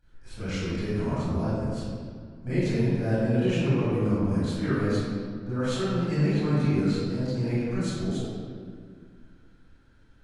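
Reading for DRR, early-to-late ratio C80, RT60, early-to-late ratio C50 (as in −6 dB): −15.0 dB, −2.5 dB, 2.0 s, −5.5 dB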